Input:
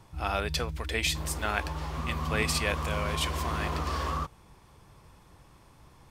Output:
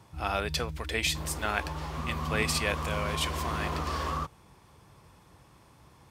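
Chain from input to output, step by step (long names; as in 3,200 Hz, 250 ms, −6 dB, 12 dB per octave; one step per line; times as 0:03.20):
high-pass filter 65 Hz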